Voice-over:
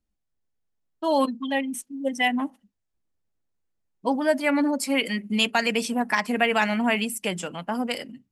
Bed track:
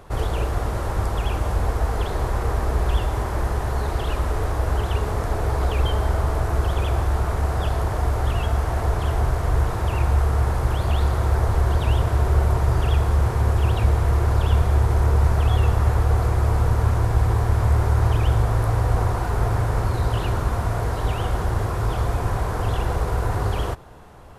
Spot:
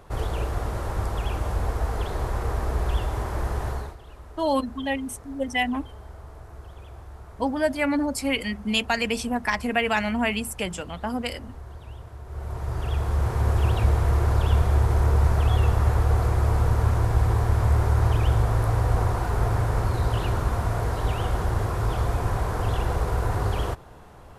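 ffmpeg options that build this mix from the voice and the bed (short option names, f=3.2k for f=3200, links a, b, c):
-filter_complex "[0:a]adelay=3350,volume=-1.5dB[a];[1:a]volume=15dB,afade=t=out:st=3.68:d=0.28:silence=0.141254,afade=t=in:st=12.26:d=1.31:silence=0.112202[b];[a][b]amix=inputs=2:normalize=0"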